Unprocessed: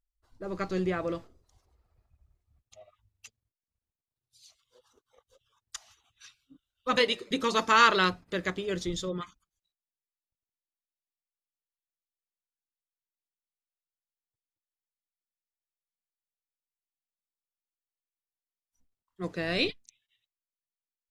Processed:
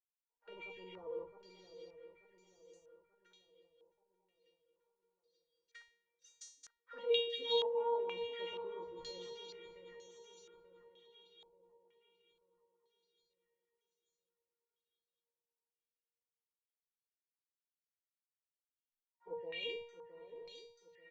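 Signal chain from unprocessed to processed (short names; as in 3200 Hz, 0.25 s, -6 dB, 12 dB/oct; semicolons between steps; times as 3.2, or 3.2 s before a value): bin magnitudes rounded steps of 15 dB; de-hum 104.4 Hz, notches 6; sample leveller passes 3; reverse; compressor 8:1, threshold -23 dBFS, peak gain reduction 11.5 dB; reverse; notch comb 1300 Hz; three bands offset in time highs, mids, lows 60/120 ms, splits 160/1400 Hz; envelope flanger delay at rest 7.1 ms, full sweep at -27 dBFS; resonator 470 Hz, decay 0.46 s, mix 100%; on a send: swung echo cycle 0.885 s, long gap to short 3:1, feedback 41%, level -9 dB; on the sum: stepped low-pass 2.1 Hz 840–6300 Hz; gain +5 dB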